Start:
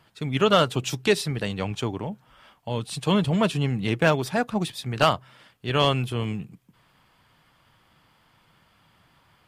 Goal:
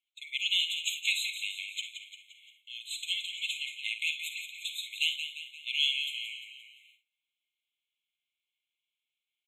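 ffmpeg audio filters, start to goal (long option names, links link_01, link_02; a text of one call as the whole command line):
ffmpeg -i in.wav -filter_complex "[0:a]asplit=2[link_01][link_02];[link_02]asplit=6[link_03][link_04][link_05][link_06][link_07][link_08];[link_03]adelay=174,afreqshift=-53,volume=-8.5dB[link_09];[link_04]adelay=348,afreqshift=-106,volume=-14.3dB[link_10];[link_05]adelay=522,afreqshift=-159,volume=-20.2dB[link_11];[link_06]adelay=696,afreqshift=-212,volume=-26dB[link_12];[link_07]adelay=870,afreqshift=-265,volume=-31.9dB[link_13];[link_08]adelay=1044,afreqshift=-318,volume=-37.7dB[link_14];[link_09][link_10][link_11][link_12][link_13][link_14]amix=inputs=6:normalize=0[link_15];[link_01][link_15]amix=inputs=2:normalize=0,agate=range=-22dB:threshold=-47dB:ratio=16:detection=peak,asplit=2[link_16][link_17];[link_17]aecho=0:1:52|69:0.266|0.178[link_18];[link_16][link_18]amix=inputs=2:normalize=0,afftfilt=real='re*eq(mod(floor(b*sr/1024/2100),2),1)':imag='im*eq(mod(floor(b*sr/1024/2100),2),1)':win_size=1024:overlap=0.75" out.wav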